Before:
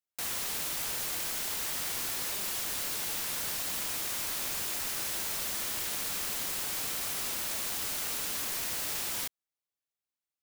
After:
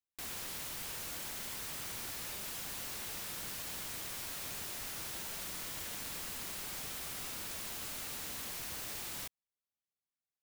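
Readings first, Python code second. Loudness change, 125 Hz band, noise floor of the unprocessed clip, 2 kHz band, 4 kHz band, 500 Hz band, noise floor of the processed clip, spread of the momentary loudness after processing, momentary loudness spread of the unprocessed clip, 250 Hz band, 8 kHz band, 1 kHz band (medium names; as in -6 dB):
-8.5 dB, -2.0 dB, under -85 dBFS, -7.0 dB, -7.5 dB, -6.5 dB, under -85 dBFS, 0 LU, 0 LU, -4.5 dB, -8.5 dB, -6.5 dB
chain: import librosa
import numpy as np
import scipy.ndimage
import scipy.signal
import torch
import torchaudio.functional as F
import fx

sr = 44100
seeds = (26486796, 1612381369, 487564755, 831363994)

y = (np.mod(10.0 ** (26.5 / 20.0) * x + 1.0, 2.0) - 1.0) / 10.0 ** (26.5 / 20.0)
y = fx.bass_treble(y, sr, bass_db=5, treble_db=-2)
y = y * librosa.db_to_amplitude(-6.5)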